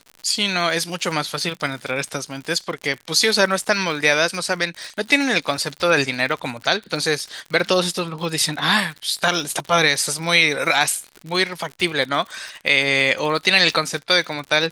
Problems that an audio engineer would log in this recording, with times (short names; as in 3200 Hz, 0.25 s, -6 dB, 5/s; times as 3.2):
crackle 73/s -28 dBFS